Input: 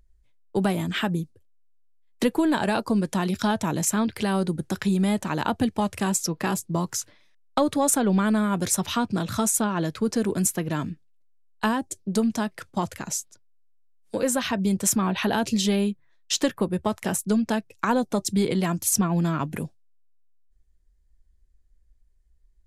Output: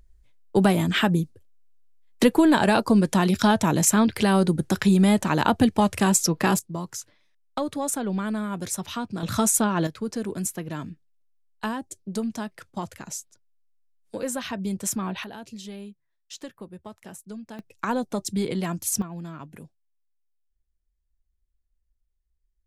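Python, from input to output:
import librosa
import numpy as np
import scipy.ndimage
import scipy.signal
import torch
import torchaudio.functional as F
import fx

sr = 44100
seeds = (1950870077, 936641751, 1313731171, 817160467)

y = fx.gain(x, sr, db=fx.steps((0.0, 4.5), (6.59, -6.0), (9.23, 2.0), (9.87, -5.5), (15.24, -16.0), (17.59, -3.5), (19.02, -13.0)))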